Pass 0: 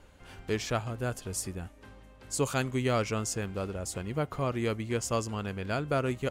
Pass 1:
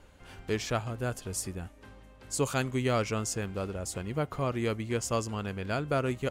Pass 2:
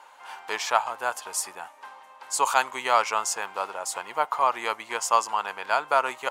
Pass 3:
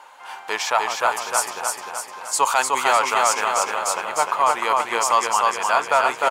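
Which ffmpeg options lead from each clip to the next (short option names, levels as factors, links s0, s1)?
-af anull
-af "highpass=f=910:t=q:w=4.9,volume=2"
-af "aecho=1:1:303|606|909|1212|1515|1818|2121:0.668|0.361|0.195|0.105|0.0568|0.0307|0.0166,apsyclip=4.47,volume=0.398"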